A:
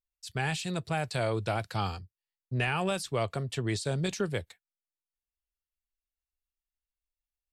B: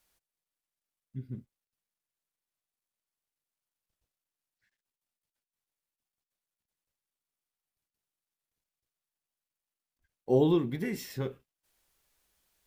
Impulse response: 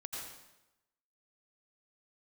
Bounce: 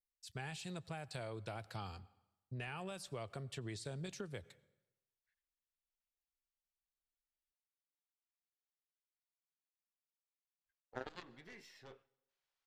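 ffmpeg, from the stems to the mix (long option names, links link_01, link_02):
-filter_complex "[0:a]volume=-10.5dB,asplit=2[link_01][link_02];[link_02]volume=-21.5dB[link_03];[1:a]acrossover=split=530 5900:gain=0.178 1 0.0891[link_04][link_05][link_06];[link_04][link_05][link_06]amix=inputs=3:normalize=0,aeval=exprs='0.0891*(cos(1*acos(clip(val(0)/0.0891,-1,1)))-cos(1*PI/2))+0.0355*(cos(3*acos(clip(val(0)/0.0891,-1,1)))-cos(3*PI/2))+0.0112*(cos(4*acos(clip(val(0)/0.0891,-1,1)))-cos(4*PI/2))+0.00708*(cos(6*acos(clip(val(0)/0.0891,-1,1)))-cos(6*PI/2))':channel_layout=same,adelay=650,volume=1.5dB,asplit=2[link_07][link_08];[link_08]volume=-22.5dB[link_09];[2:a]atrim=start_sample=2205[link_10];[link_03][link_09]amix=inputs=2:normalize=0[link_11];[link_11][link_10]afir=irnorm=-1:irlink=0[link_12];[link_01][link_07][link_12]amix=inputs=3:normalize=0,acompressor=threshold=-41dB:ratio=6"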